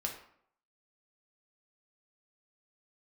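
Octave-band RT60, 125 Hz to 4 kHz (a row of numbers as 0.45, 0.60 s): 0.60, 0.65, 0.65, 0.65, 0.55, 0.40 s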